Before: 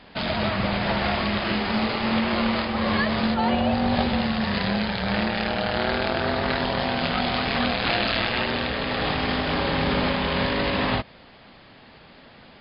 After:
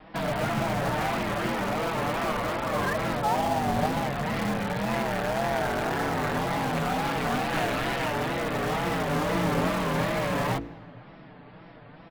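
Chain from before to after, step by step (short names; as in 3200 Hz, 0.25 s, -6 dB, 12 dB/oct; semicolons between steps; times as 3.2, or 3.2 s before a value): Bessel low-pass 1400 Hz, order 2; comb 6.7 ms, depth 83%; de-hum 50.95 Hz, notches 9; in parallel at -10 dB: wrapped overs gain 22 dB; on the sum: wow and flutter 130 cents; on a send at -22.5 dB: reverb RT60 3.5 s, pre-delay 77 ms; on the sum: speed mistake 24 fps film run at 25 fps; gain -3 dB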